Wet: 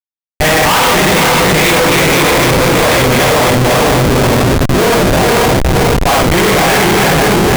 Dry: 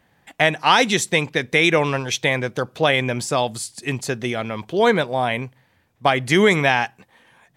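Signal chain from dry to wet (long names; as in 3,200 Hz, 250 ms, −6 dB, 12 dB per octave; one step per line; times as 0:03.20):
feedback delay that plays each chunk backwards 254 ms, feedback 77%, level −1 dB
0:05.32–0:06.85: low-shelf EQ 230 Hz −6.5 dB
power curve on the samples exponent 1.4
reverb whose tail is shaped and stops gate 130 ms flat, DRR −3 dB
comparator with hysteresis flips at −20 dBFS
level +7.5 dB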